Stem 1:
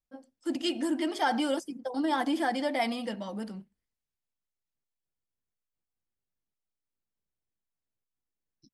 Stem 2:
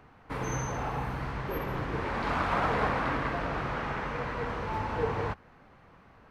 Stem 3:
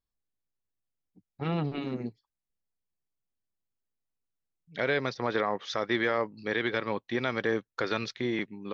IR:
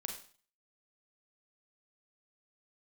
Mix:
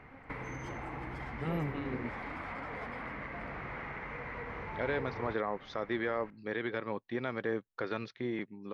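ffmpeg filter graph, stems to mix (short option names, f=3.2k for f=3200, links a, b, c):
-filter_complex "[0:a]asoftclip=type=tanh:threshold=-32dB,volume=-11.5dB,asplit=2[a][b];[b]volume=-13dB[c];[1:a]equalizer=f=2.1k:t=o:w=0.39:g=13.5,acompressor=threshold=-35dB:ratio=6,volume=-0.5dB,asplit=2[d][e];[e]volume=-11dB[f];[2:a]highshelf=f=6k:g=-9,volume=-5dB[g];[a][d]amix=inputs=2:normalize=0,acompressor=threshold=-40dB:ratio=6,volume=0dB[h];[3:a]atrim=start_sample=2205[i];[c][f]amix=inputs=2:normalize=0[j];[j][i]afir=irnorm=-1:irlink=0[k];[g][h][k]amix=inputs=3:normalize=0,highshelf=f=3.9k:g=-12"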